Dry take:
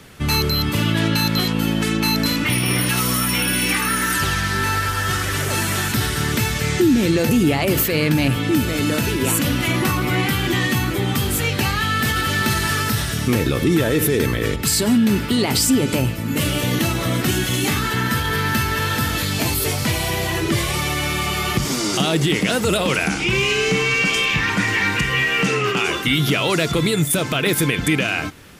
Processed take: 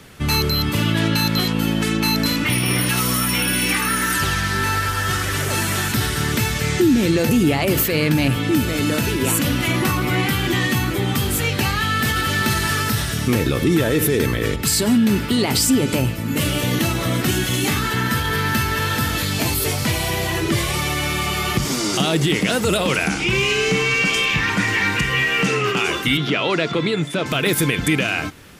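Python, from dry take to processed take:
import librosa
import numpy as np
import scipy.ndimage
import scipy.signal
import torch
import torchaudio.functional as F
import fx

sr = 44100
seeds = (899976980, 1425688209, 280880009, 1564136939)

y = fx.bandpass_edges(x, sr, low_hz=180.0, high_hz=3800.0, at=(26.17, 27.26))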